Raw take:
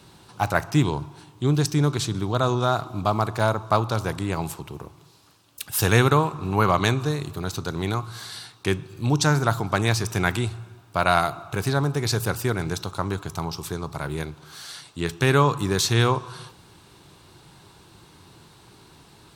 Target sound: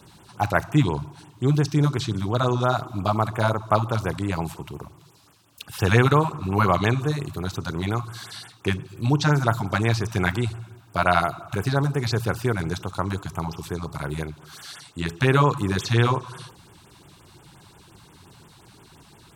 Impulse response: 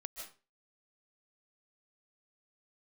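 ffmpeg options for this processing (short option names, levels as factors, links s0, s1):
-filter_complex "[0:a]acrossover=split=4600[s0][s1];[s1]acompressor=threshold=0.00794:ratio=4:attack=1:release=60[s2];[s0][s2]amix=inputs=2:normalize=0,afftfilt=real='re*(1-between(b*sr/1024,350*pow(5200/350,0.5+0.5*sin(2*PI*5.7*pts/sr))/1.41,350*pow(5200/350,0.5+0.5*sin(2*PI*5.7*pts/sr))*1.41))':imag='im*(1-between(b*sr/1024,350*pow(5200/350,0.5+0.5*sin(2*PI*5.7*pts/sr))/1.41,350*pow(5200/350,0.5+0.5*sin(2*PI*5.7*pts/sr))*1.41))':win_size=1024:overlap=0.75,volume=1.12"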